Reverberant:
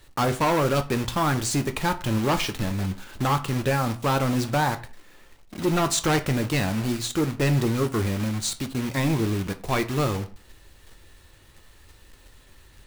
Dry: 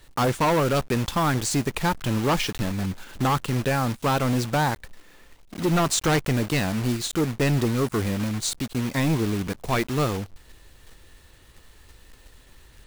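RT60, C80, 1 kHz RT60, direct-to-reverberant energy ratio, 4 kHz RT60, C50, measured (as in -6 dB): 0.45 s, 20.0 dB, 0.45 s, 7.5 dB, 0.30 s, 16.0 dB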